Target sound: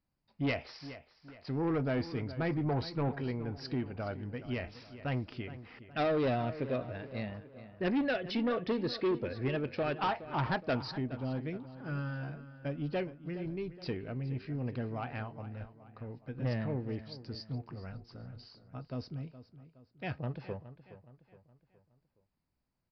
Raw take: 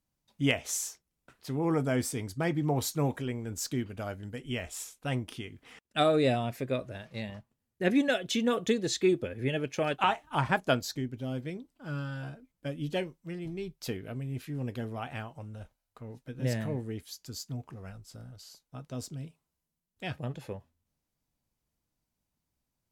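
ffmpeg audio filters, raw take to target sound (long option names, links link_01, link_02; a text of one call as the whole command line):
ffmpeg -i in.wav -filter_complex "[0:a]equalizer=frequency=3400:width=3.3:gain=-10.5,aresample=11025,asoftclip=type=tanh:threshold=-26dB,aresample=44100,asplit=2[link_01][link_02];[link_02]adelay=418,lowpass=frequency=4100:poles=1,volume=-14dB,asplit=2[link_03][link_04];[link_04]adelay=418,lowpass=frequency=4100:poles=1,volume=0.45,asplit=2[link_05][link_06];[link_06]adelay=418,lowpass=frequency=4100:poles=1,volume=0.45,asplit=2[link_07][link_08];[link_08]adelay=418,lowpass=frequency=4100:poles=1,volume=0.45[link_09];[link_01][link_03][link_05][link_07][link_09]amix=inputs=5:normalize=0" out.wav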